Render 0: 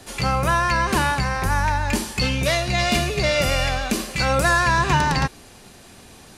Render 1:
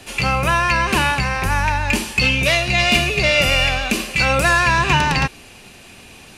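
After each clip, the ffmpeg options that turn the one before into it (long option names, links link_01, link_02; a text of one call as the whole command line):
ffmpeg -i in.wav -af "equalizer=frequency=2600:width_type=o:width=0.5:gain=11,volume=1.5dB" out.wav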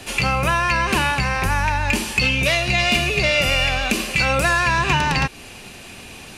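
ffmpeg -i in.wav -af "acompressor=threshold=-23dB:ratio=2,volume=3.5dB" out.wav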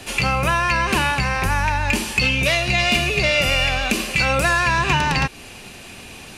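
ffmpeg -i in.wav -af anull out.wav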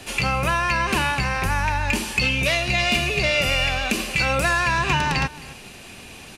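ffmpeg -i in.wav -af "aecho=1:1:266:0.112,volume=-2.5dB" out.wav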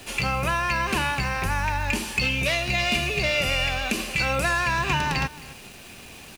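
ffmpeg -i in.wav -af "acrusher=bits=8:dc=4:mix=0:aa=0.000001,volume=-3dB" out.wav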